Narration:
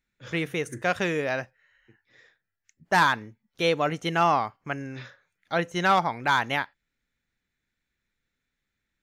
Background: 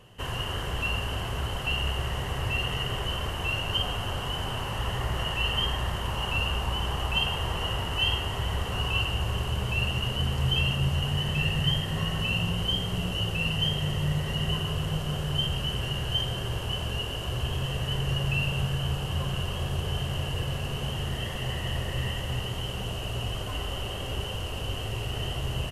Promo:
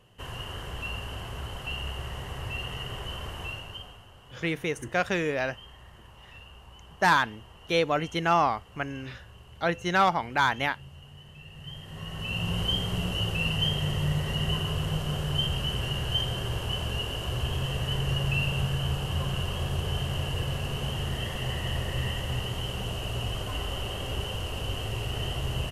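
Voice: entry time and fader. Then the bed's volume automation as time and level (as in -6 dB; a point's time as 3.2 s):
4.10 s, -1.0 dB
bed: 3.43 s -6 dB
4.09 s -21 dB
11.45 s -21 dB
12.56 s 0 dB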